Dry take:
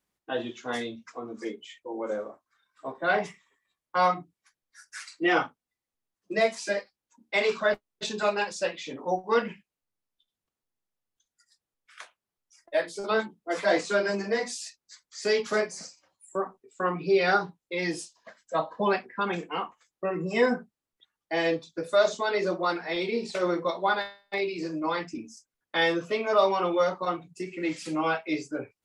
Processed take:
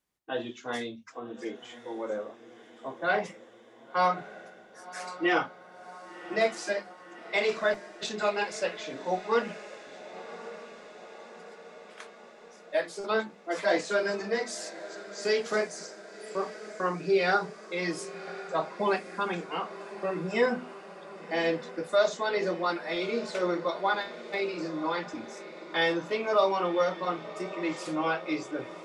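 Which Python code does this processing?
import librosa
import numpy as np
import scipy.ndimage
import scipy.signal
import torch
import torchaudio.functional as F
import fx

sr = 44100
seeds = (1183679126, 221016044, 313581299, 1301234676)

p1 = fx.hum_notches(x, sr, base_hz=50, count=5)
p2 = p1 + fx.echo_diffused(p1, sr, ms=1092, feedback_pct=63, wet_db=-14.5, dry=0)
y = F.gain(torch.from_numpy(p2), -2.0).numpy()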